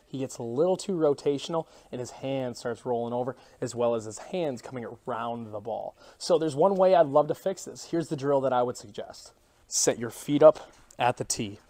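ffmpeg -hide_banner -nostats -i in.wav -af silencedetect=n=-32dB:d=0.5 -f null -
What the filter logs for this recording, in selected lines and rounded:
silence_start: 9.10
silence_end: 9.72 | silence_duration: 0.62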